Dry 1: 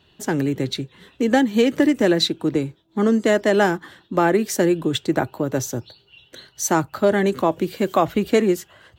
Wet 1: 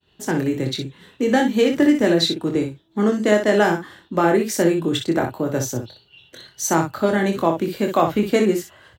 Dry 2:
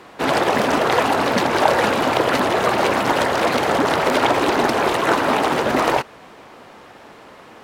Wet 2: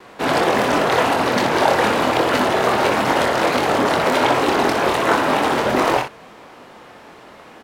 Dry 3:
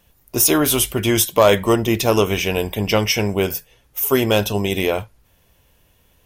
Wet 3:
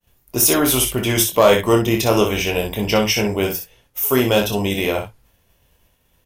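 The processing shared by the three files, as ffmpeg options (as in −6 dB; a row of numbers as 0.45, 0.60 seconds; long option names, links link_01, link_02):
-af "aecho=1:1:24|61:0.531|0.447,agate=range=-33dB:threshold=-51dB:ratio=3:detection=peak,volume=-1dB"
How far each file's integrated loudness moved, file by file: +0.5, +0.5, +0.5 LU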